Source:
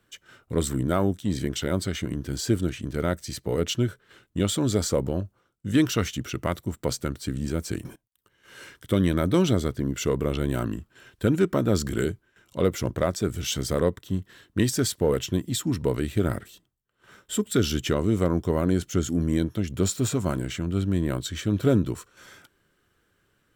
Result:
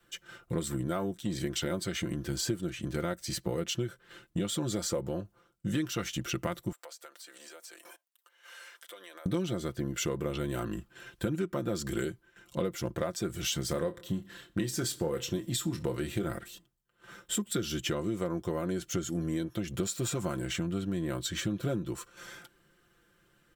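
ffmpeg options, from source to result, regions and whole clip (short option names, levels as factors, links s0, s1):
-filter_complex "[0:a]asettb=1/sr,asplit=3[s0][s1][s2];[s0]atrim=end=6.724[s3];[s1]atrim=start=6.72:end=9.26,asetpts=PTS-STARTPTS,afade=t=in:d=0.004:c=qsin,afade=t=out:st=2.536:d=0.004:c=qsin,highpass=f=570:w=0.5412,highpass=f=570:w=1.3066,acompressor=threshold=0.00398:ratio=5:attack=3.2:release=140:knee=1:detection=peak[s4];[s2]atrim=start=9.256[s5];[s3][s4]acrossfade=d=0.004:c1=hsin:c2=qsin[s6];[s6][s5]acrossfade=d=0.004:c1=qsin:c2=hsin,asettb=1/sr,asplit=3[s7][s8][s9];[s7]atrim=end=13.684[s10];[s8]atrim=start=13.68:end=16.31,asetpts=PTS-STARTPTS,afade=t=in:d=0.004:c=qsin,afade=t=out:st=2.626:d=0.004:c=qsin,asplit=2[s11][s12];[s12]adelay=25,volume=0.316[s13];[s11][s13]amix=inputs=2:normalize=0,atrim=end_sample=115983,aecho=1:1:62|124|186:0.0708|0.0368|0.0191,atrim=end_sample=115983[s14];[s9]atrim=start=16.306[s15];[s10][s14]acrossfade=d=0.004:c1=hsin:c2=qsin[s16];[s16][s15]acrossfade=d=0.004:c1=qsin:c2=hsin,aecho=1:1:5.8:0.66,adynamicequalizer=threshold=0.0178:dfrequency=170:dqfactor=1.1:tfrequency=170:tqfactor=1.1:attack=5:release=100:ratio=0.375:range=3:mode=cutabove:tftype=bell,acompressor=threshold=0.0355:ratio=6"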